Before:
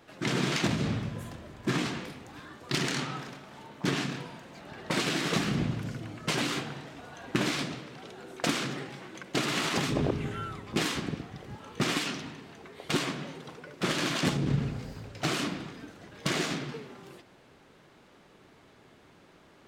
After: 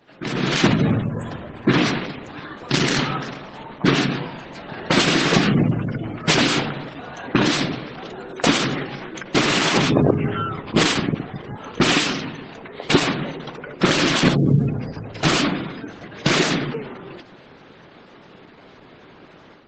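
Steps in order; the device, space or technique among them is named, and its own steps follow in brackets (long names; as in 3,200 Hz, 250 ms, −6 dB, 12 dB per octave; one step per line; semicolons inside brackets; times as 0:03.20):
0:06.89–0:07.58: dynamic equaliser 2,200 Hz, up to −3 dB, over −48 dBFS, Q 6.1
noise-suppressed video call (high-pass filter 100 Hz 12 dB per octave; gate on every frequency bin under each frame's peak −25 dB strong; automatic gain control gain up to 11 dB; level +2 dB; Opus 12 kbit/s 48,000 Hz)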